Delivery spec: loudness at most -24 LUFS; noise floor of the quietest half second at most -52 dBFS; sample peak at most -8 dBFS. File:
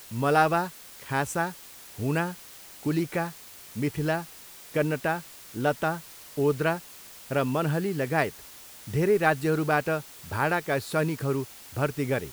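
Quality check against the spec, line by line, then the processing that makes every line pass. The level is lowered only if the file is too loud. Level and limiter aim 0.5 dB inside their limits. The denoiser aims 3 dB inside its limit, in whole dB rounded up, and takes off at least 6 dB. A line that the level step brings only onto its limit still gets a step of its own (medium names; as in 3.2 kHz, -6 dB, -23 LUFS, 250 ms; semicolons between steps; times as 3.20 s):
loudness -28.0 LUFS: pass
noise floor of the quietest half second -47 dBFS: fail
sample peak -7.5 dBFS: fail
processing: noise reduction 8 dB, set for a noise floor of -47 dBFS; peak limiter -8.5 dBFS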